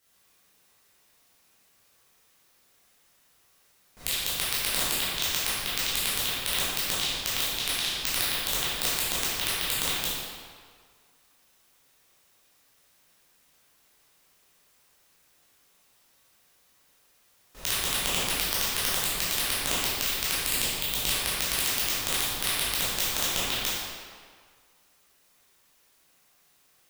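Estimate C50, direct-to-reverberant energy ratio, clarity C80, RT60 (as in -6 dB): -3.5 dB, -10.5 dB, -1.0 dB, 1.8 s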